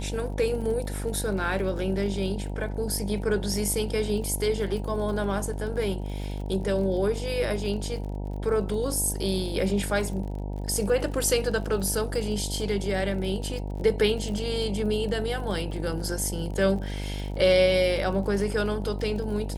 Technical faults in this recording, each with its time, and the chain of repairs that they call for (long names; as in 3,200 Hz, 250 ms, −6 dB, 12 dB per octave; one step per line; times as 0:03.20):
mains buzz 50 Hz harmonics 19 −32 dBFS
surface crackle 32 per second −35 dBFS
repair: click removal
hum removal 50 Hz, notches 19